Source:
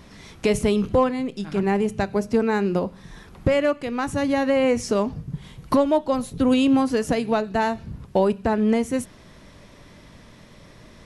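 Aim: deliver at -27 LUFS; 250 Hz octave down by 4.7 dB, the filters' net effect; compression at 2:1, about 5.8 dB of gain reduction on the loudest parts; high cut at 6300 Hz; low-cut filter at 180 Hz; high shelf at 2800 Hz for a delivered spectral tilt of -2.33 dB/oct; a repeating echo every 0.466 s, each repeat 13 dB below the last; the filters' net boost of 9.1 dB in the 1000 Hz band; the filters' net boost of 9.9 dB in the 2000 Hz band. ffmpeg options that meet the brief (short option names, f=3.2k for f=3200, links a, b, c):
-af "highpass=180,lowpass=6.3k,equalizer=f=250:t=o:g=-4.5,equalizer=f=1k:t=o:g=9,equalizer=f=2k:t=o:g=7,highshelf=f=2.8k:g=6.5,acompressor=threshold=-19dB:ratio=2,aecho=1:1:466|932|1398:0.224|0.0493|0.0108,volume=-4dB"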